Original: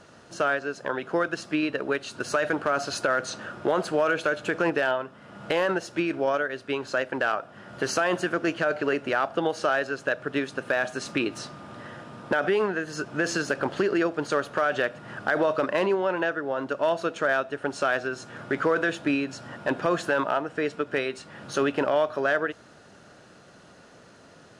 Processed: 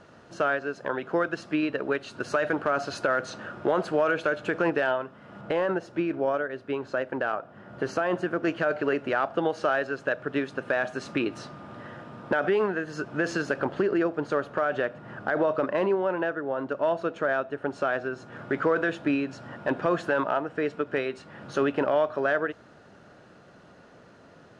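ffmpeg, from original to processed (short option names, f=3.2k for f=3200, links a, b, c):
-af "asetnsamples=n=441:p=0,asendcmd='5.41 lowpass f 1100;8.43 lowpass f 2300;13.65 lowpass f 1300;18.32 lowpass f 2100',lowpass=f=2.5k:p=1"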